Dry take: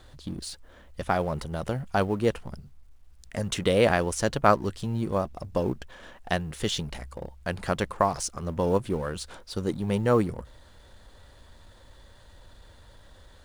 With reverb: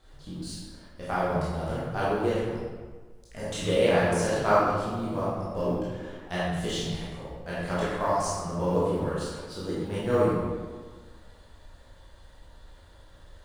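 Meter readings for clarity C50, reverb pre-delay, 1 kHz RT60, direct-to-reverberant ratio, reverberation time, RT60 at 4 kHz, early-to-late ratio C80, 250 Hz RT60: −3.0 dB, 15 ms, 1.5 s, −10.0 dB, 1.5 s, 1.0 s, −0.5 dB, 1.5 s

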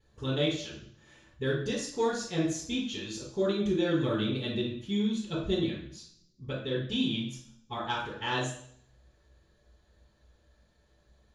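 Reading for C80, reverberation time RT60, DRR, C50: 7.5 dB, 0.60 s, −14.5 dB, 3.0 dB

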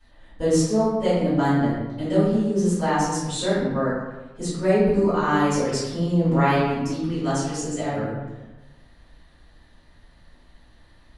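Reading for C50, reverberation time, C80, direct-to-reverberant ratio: −1.5 dB, 1.1 s, 2.0 dB, −14.5 dB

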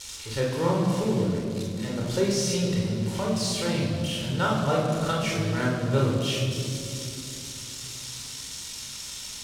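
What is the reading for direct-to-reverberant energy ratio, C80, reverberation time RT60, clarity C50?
−3.0 dB, 3.5 dB, 2.7 s, 1.5 dB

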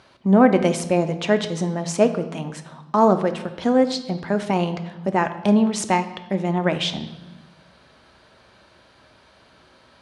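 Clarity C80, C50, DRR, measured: 14.5 dB, 12.0 dB, 8.0 dB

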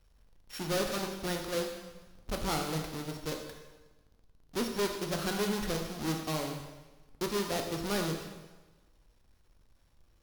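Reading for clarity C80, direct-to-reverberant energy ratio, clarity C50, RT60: 7.0 dB, 2.5 dB, 5.5 dB, 1.2 s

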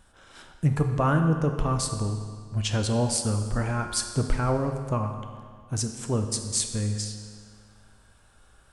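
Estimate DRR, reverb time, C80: 5.0 dB, 1.9 s, 8.0 dB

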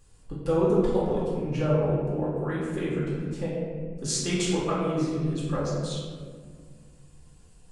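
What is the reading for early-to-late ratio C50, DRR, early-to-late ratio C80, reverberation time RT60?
−1.0 dB, −8.5 dB, 1.0 dB, 1.8 s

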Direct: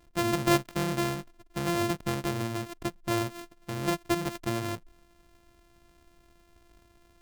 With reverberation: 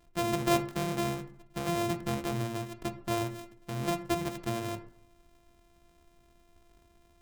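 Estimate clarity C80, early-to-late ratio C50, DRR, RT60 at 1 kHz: 17.0 dB, 13.5 dB, 7.5 dB, 0.60 s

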